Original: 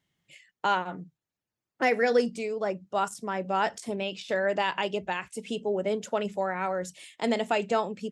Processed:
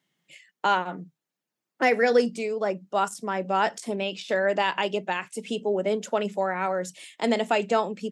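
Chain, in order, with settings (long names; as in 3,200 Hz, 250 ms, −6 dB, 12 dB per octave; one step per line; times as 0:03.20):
high-pass filter 160 Hz 24 dB per octave
level +3 dB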